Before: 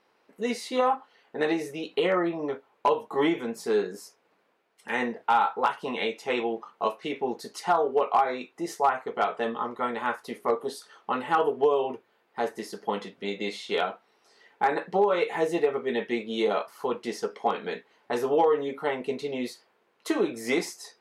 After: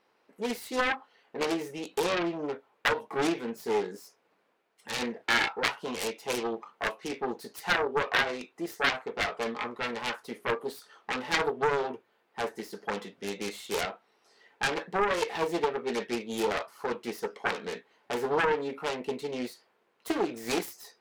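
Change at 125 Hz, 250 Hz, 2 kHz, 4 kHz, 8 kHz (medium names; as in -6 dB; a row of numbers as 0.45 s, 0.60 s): -0.5 dB, -3.5 dB, +3.0 dB, +3.0 dB, +3.0 dB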